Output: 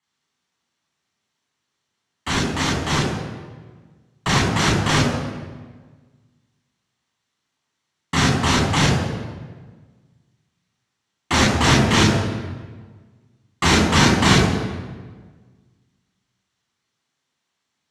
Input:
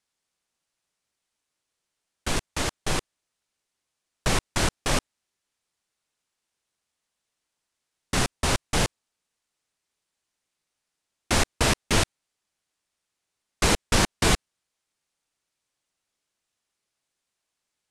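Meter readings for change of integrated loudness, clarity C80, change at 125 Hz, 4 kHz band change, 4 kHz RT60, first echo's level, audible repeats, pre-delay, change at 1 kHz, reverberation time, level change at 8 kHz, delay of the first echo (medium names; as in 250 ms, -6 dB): +7.0 dB, 5.0 dB, +11.0 dB, +7.0 dB, 1.1 s, no echo, no echo, 3 ms, +8.5 dB, 1.5 s, +3.0 dB, no echo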